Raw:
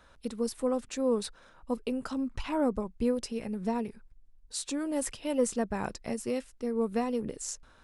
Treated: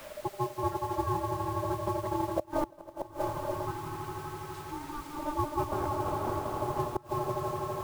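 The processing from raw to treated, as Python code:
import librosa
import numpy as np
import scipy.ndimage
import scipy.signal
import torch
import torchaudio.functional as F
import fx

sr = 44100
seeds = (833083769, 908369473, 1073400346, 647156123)

y = fx.transient(x, sr, attack_db=3, sustain_db=-9)
y = fx.tilt_eq(y, sr, slope=-3.5)
y = fx.echo_swell(y, sr, ms=82, loudest=5, wet_db=-7)
y = fx.dereverb_blind(y, sr, rt60_s=0.74)
y = fx.highpass(y, sr, hz=690.0, slope=6, at=(3.13, 5.16))
y = fx.mod_noise(y, sr, seeds[0], snr_db=16)
y = y * np.sin(2.0 * np.pi * 600.0 * np.arange(len(y)) / sr)
y = fx.echo_multitap(y, sr, ms=(187, 214, 479, 481, 590), db=(-7.5, -17.5, -11.0, -17.0, -14.0))
y = fx.dmg_noise_colour(y, sr, seeds[1], colour='white', level_db=-41.0)
y = fx.gate_flip(y, sr, shuts_db=-9.0, range_db=-25)
y = fx.high_shelf(y, sr, hz=3200.0, db=-9.0)
y = fx.band_squash(y, sr, depth_pct=40)
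y = y * 10.0 ** (-6.5 / 20.0)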